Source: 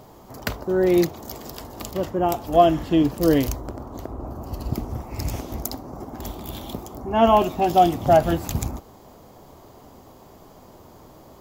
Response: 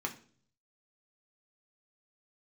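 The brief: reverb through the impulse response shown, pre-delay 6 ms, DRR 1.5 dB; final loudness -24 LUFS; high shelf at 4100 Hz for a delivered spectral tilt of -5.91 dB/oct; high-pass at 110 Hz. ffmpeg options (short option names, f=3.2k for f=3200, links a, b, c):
-filter_complex "[0:a]highpass=110,highshelf=f=4.1k:g=5.5,asplit=2[a][b];[1:a]atrim=start_sample=2205,adelay=6[c];[b][c]afir=irnorm=-1:irlink=0,volume=-4.5dB[d];[a][d]amix=inputs=2:normalize=0,volume=-6dB"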